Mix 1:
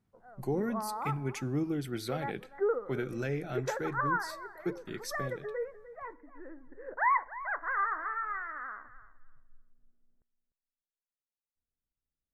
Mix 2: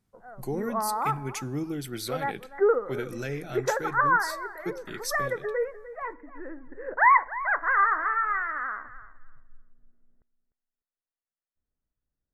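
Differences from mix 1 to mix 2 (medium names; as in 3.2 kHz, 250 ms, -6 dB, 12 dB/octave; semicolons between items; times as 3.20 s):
background +7.5 dB; master: add treble shelf 3.4 kHz +10.5 dB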